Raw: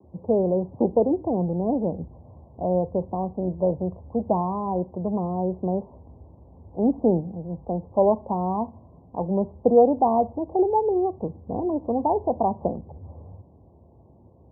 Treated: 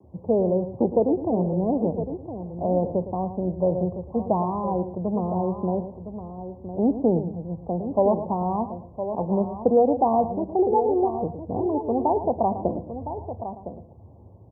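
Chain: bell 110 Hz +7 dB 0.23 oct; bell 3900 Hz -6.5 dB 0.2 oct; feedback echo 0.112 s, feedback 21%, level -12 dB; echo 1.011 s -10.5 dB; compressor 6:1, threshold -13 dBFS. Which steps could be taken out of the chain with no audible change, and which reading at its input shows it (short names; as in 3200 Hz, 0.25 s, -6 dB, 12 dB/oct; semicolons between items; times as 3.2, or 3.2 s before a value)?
bell 3900 Hz: input band ends at 1100 Hz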